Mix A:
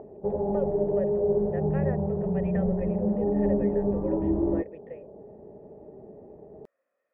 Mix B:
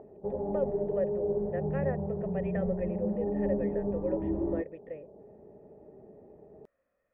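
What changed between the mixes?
speech: remove high-pass 340 Hz 12 dB/octave; background -6.0 dB

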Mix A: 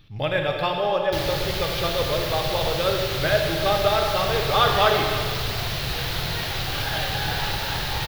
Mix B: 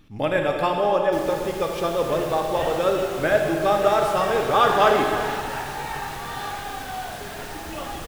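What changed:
first sound -10.5 dB; second sound: entry -2.15 s; master: add ten-band graphic EQ 125 Hz -8 dB, 250 Hz +11 dB, 1 kHz +3 dB, 4 kHz -10 dB, 8 kHz +12 dB

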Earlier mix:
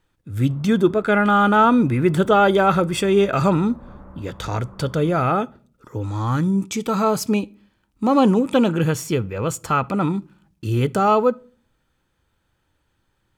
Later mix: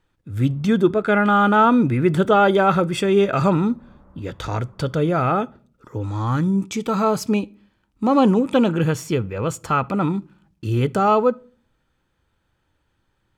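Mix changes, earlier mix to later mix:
background -9.0 dB; master: add treble shelf 6.9 kHz -7 dB

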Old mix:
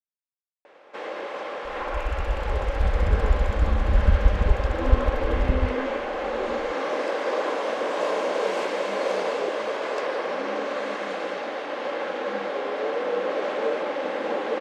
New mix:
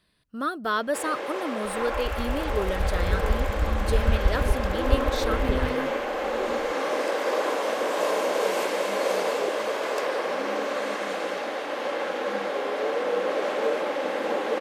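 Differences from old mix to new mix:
speech: unmuted; second sound -4.0 dB; master: remove distance through air 82 m

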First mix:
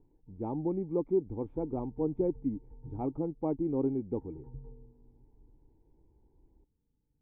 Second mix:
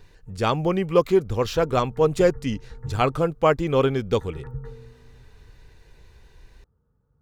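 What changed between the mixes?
background: add high-pass 57 Hz; master: remove cascade formant filter u

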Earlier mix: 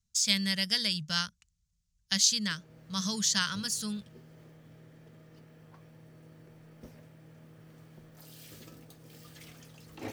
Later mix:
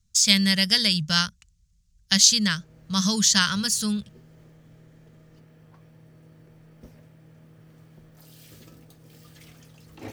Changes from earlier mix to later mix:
speech +8.5 dB; master: add bass shelf 120 Hz +7 dB

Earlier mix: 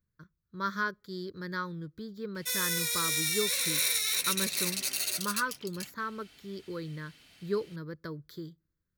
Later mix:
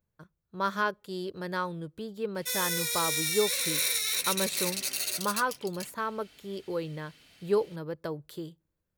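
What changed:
speech: remove static phaser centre 2.8 kHz, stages 6; master: add peaking EQ 510 Hz +3 dB 0.68 oct

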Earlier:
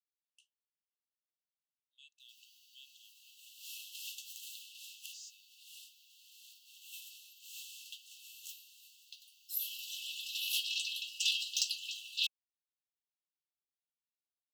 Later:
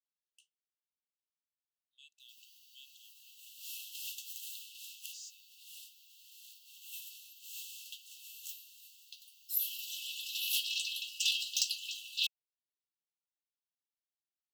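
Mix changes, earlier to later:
background: add treble shelf 11 kHz -4 dB; master: add treble shelf 11 kHz +11.5 dB

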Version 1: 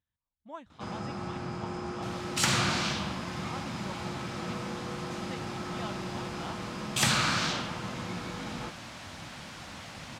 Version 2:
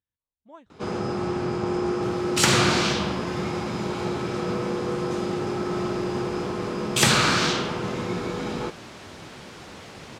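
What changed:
speech -5.0 dB; first sound +6.5 dB; master: add peaking EQ 410 Hz +12.5 dB 0.53 oct

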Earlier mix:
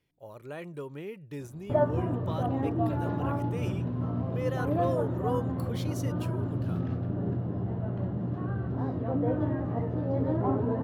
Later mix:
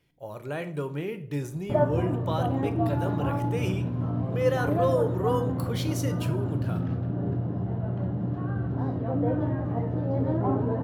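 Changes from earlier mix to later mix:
speech +5.5 dB; reverb: on, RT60 0.55 s

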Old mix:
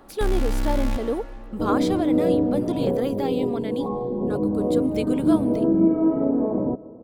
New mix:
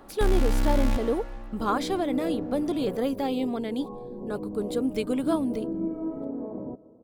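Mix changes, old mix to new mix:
speech: send off; second sound -12.0 dB

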